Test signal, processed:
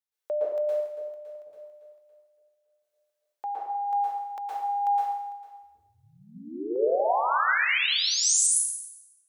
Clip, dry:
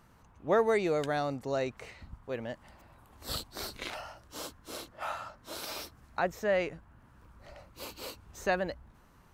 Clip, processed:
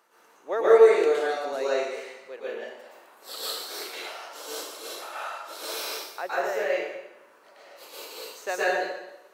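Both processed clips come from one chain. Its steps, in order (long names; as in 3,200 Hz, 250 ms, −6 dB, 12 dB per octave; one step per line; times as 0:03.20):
Chebyshev high-pass filter 400 Hz, order 3
shaped tremolo saw down 0.74 Hz, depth 50%
dense smooth reverb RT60 0.95 s, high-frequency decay 0.95×, pre-delay 105 ms, DRR −8.5 dB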